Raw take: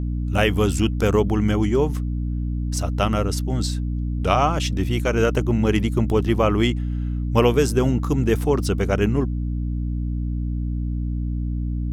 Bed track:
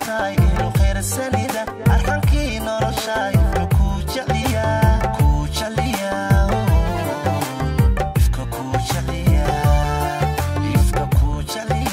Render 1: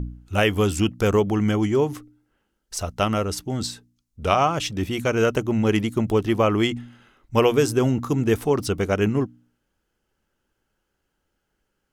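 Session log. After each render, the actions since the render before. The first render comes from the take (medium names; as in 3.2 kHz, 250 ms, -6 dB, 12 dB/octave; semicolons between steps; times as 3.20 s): de-hum 60 Hz, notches 5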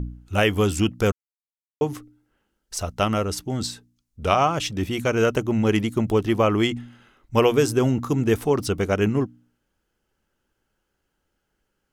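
1.12–1.81 s: mute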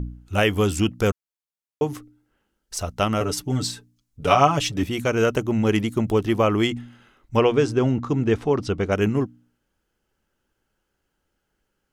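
3.20–4.83 s: comb 7 ms, depth 84%; 7.37–8.92 s: distance through air 110 m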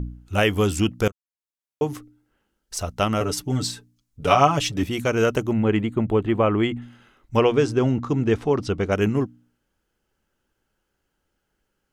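1.08–1.87 s: fade in, from -21.5 dB; 5.53–6.82 s: boxcar filter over 8 samples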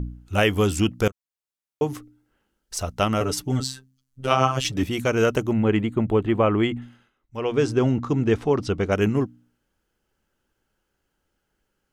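3.60–4.65 s: robot voice 131 Hz; 6.82–7.66 s: dip -14.5 dB, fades 0.29 s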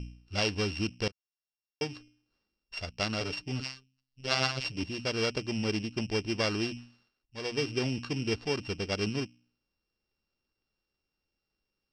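sorted samples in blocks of 16 samples; four-pole ladder low-pass 5.3 kHz, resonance 65%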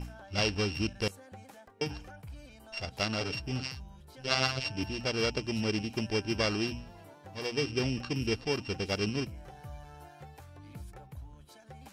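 add bed track -30 dB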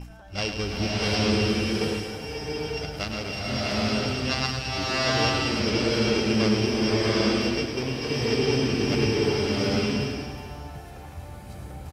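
delay 106 ms -8 dB; swelling reverb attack 840 ms, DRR -7.5 dB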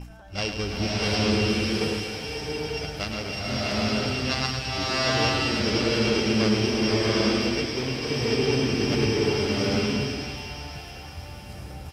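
feedback echo behind a high-pass 497 ms, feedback 56%, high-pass 1.7 kHz, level -8 dB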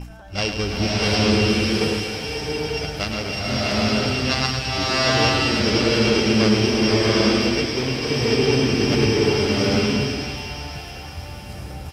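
trim +5 dB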